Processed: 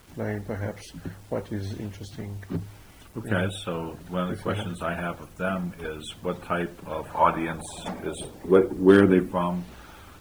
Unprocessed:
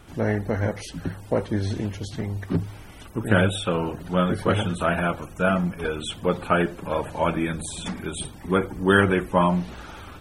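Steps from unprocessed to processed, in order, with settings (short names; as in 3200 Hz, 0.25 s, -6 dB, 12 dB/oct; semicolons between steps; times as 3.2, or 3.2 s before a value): 7.09–9.32 bell 1200 Hz -> 230 Hz +14.5 dB 1.4 oct; requantised 8-bit, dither none; gain -6.5 dB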